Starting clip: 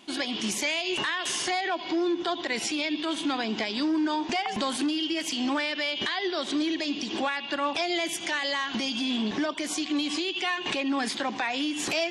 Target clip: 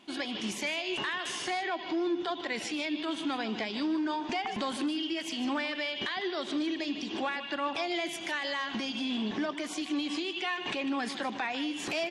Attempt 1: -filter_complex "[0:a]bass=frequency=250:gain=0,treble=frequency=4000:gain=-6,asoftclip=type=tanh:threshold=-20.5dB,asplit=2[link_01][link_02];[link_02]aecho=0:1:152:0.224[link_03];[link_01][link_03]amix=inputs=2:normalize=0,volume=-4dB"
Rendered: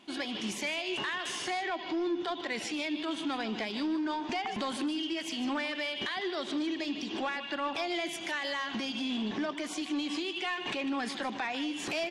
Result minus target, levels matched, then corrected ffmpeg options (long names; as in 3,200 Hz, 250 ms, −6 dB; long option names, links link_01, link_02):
soft clipping: distortion +18 dB
-filter_complex "[0:a]bass=frequency=250:gain=0,treble=frequency=4000:gain=-6,asoftclip=type=tanh:threshold=-10.5dB,asplit=2[link_01][link_02];[link_02]aecho=0:1:152:0.224[link_03];[link_01][link_03]amix=inputs=2:normalize=0,volume=-4dB"